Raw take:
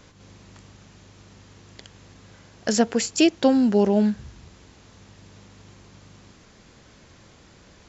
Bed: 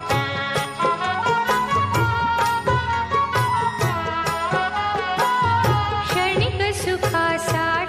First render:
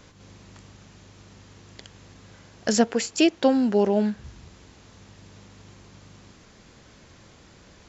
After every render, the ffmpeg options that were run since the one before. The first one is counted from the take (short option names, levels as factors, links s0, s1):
-filter_complex "[0:a]asettb=1/sr,asplit=3[s0][s1][s2];[s0]atrim=end=2.844[s3];[s1]atrim=start=2.84:end=4.24,asetpts=PTS-STARTPTS,afade=t=in:d=0.004:c=qsin,afade=t=out:st=1.396:d=0.004:c=qsin,bass=f=250:g=-6,treble=f=4000:g=-4[s4];[s2]atrim=start=4.236[s5];[s3][s4]acrossfade=d=0.004:c1=hsin:c2=qsin[s6];[s6][s5]acrossfade=d=0.004:c1=qsin:c2=hsin"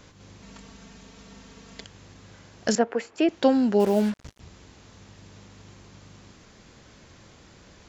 -filter_complex "[0:a]asettb=1/sr,asplit=3[s0][s1][s2];[s0]atrim=end=0.424[s3];[s1]atrim=start=0.42:end=1.84,asetpts=PTS-STARTPTS,afade=t=in:d=0.004:c=qsin,afade=t=out:st=1.416:d=0.004:c=qsin,aecho=1:1:4.4:1,atrim=end_sample=62622[s4];[s2]atrim=start=1.836[s5];[s3][s4]acrossfade=d=0.004:c1=hsin:c2=qsin[s6];[s6][s5]acrossfade=d=0.004:c1=qsin:c2=hsin,asettb=1/sr,asplit=3[s7][s8][s9];[s7]atrim=end=2.754[s10];[s8]atrim=start=2.75:end=3.29,asetpts=PTS-STARTPTS,afade=t=in:d=0.004:c=qsin,afade=t=out:st=0.536:d=0.004:c=qsin,acrossover=split=290 2300:gain=0.251 1 0.112[s11][s12][s13];[s11][s12][s13]amix=inputs=3:normalize=0[s14];[s9]atrim=start=3.286[s15];[s10][s14]acrossfade=d=0.004:c1=hsin:c2=qsin[s16];[s16][s15]acrossfade=d=0.004:c1=qsin:c2=hsin,asettb=1/sr,asplit=3[s17][s18][s19];[s17]atrim=end=3.804[s20];[s18]atrim=start=3.8:end=4.4,asetpts=PTS-STARTPTS,afade=t=in:d=0.004:c=qsin,afade=t=out:st=0.596:d=0.004:c=qsin,acrusher=bits=5:mix=0:aa=0.5[s21];[s19]atrim=start=4.396[s22];[s20][s21]acrossfade=d=0.004:c1=hsin:c2=qsin[s23];[s23][s22]acrossfade=d=0.004:c1=qsin:c2=hsin"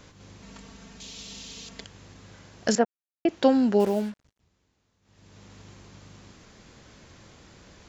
-filter_complex "[0:a]asettb=1/sr,asplit=3[s0][s1][s2];[s0]atrim=end=1.004[s3];[s1]atrim=start=1:end=1.69,asetpts=PTS-STARTPTS,afade=t=in:d=0.004:c=qsin,afade=t=out:st=0.686:d=0.004:c=qsin,highshelf=f=2300:t=q:w=1.5:g=11.5[s4];[s2]atrim=start=1.686[s5];[s3][s4]acrossfade=d=0.004:c1=hsin:c2=qsin[s6];[s6][s5]acrossfade=d=0.004:c1=qsin:c2=hsin,asplit=5[s7][s8][s9][s10][s11];[s7]atrim=end=2.85,asetpts=PTS-STARTPTS,afade=t=out:st=2.846:d=0.004:c=hsin[s12];[s8]atrim=start=2.85:end=3.25,asetpts=PTS-STARTPTS,volume=0[s13];[s9]atrim=start=3.25:end=4.25,asetpts=PTS-STARTPTS,afade=t=in:d=0.004:c=hsin,afade=t=out:st=0.5:d=0.5:silence=0.0794328[s14];[s10]atrim=start=4.25:end=5.02,asetpts=PTS-STARTPTS,volume=0.0794[s15];[s11]atrim=start=5.02,asetpts=PTS-STARTPTS,afade=t=in:d=0.5:silence=0.0794328[s16];[s12][s13][s14][s15][s16]concat=n=5:v=0:a=1"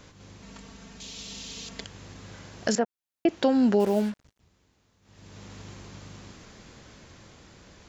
-af "alimiter=limit=0.133:level=0:latency=1:release=365,dynaudnorm=f=270:g=13:m=1.78"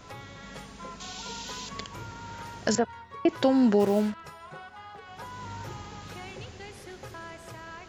-filter_complex "[1:a]volume=0.0708[s0];[0:a][s0]amix=inputs=2:normalize=0"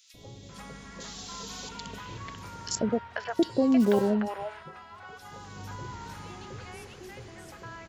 -filter_complex "[0:a]acrossover=split=680|3000[s0][s1][s2];[s0]adelay=140[s3];[s1]adelay=490[s4];[s3][s4][s2]amix=inputs=3:normalize=0"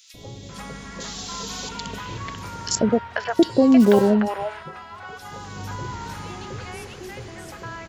-af "volume=2.51"